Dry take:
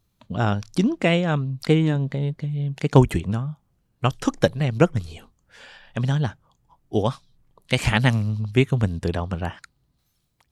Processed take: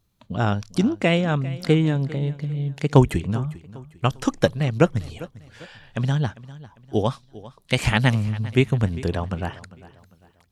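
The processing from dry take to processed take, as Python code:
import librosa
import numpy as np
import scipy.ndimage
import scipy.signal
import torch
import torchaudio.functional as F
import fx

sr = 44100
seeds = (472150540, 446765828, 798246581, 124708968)

y = fx.echo_feedback(x, sr, ms=399, feedback_pct=37, wet_db=-18.5)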